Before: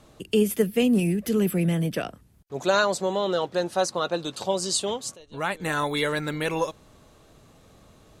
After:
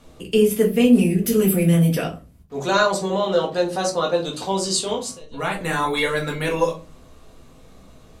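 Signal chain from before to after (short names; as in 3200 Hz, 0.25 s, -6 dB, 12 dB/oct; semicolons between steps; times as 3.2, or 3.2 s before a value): 1.2–2.03 high shelf 6200 Hz -> 8900 Hz +11 dB; reverb RT60 0.30 s, pre-delay 4 ms, DRR -1.5 dB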